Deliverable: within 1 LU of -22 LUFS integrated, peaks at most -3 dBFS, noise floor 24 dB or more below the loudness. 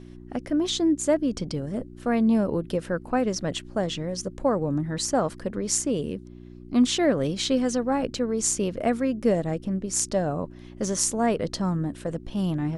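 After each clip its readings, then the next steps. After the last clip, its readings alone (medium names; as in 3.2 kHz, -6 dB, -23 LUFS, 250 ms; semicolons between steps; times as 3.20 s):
hum 60 Hz; highest harmonic 360 Hz; hum level -43 dBFS; loudness -26.0 LUFS; peak level -6.0 dBFS; loudness target -22.0 LUFS
-> de-hum 60 Hz, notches 6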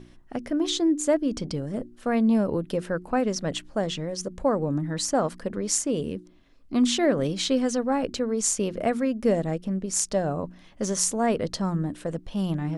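hum not found; loudness -26.0 LUFS; peak level -6.0 dBFS; loudness target -22.0 LUFS
-> trim +4 dB; peak limiter -3 dBFS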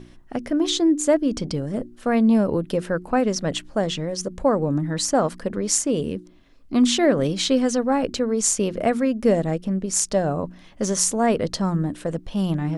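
loudness -22.0 LUFS; peak level -3.0 dBFS; noise floor -48 dBFS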